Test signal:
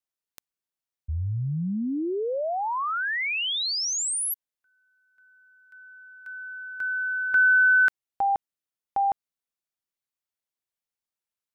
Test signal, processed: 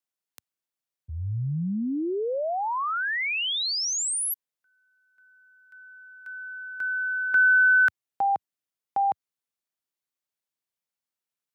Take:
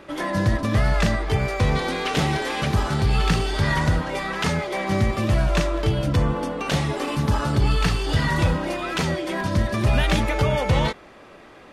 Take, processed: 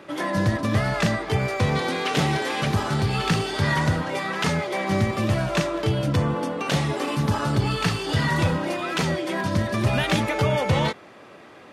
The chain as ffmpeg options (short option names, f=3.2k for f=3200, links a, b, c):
-af "highpass=f=90:w=0.5412,highpass=f=90:w=1.3066"